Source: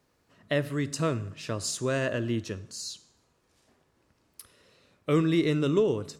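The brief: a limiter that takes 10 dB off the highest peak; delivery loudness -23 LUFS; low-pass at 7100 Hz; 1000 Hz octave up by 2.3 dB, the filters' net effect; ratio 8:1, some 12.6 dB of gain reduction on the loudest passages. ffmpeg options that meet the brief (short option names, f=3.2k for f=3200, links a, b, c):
-af "lowpass=7.1k,equalizer=f=1k:t=o:g=3,acompressor=threshold=-32dB:ratio=8,volume=15.5dB,alimiter=limit=-13dB:level=0:latency=1"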